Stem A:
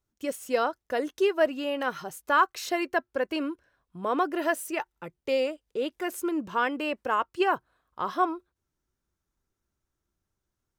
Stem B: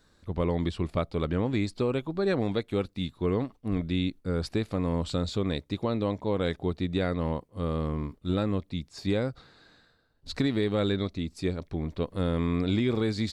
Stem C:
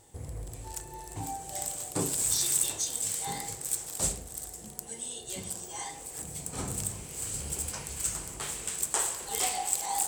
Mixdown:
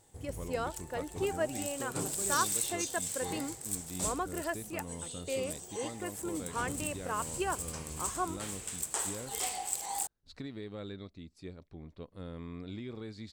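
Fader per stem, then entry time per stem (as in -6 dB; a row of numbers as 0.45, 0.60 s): -9.5, -16.0, -5.5 dB; 0.00, 0.00, 0.00 s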